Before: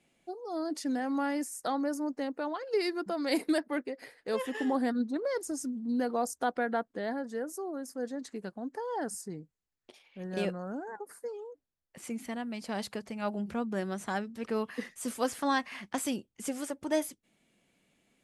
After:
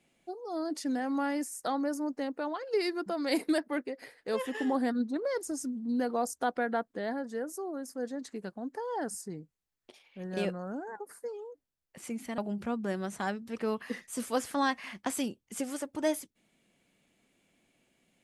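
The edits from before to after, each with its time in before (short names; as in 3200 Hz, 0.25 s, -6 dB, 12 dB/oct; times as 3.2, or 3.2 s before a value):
12.38–13.26 cut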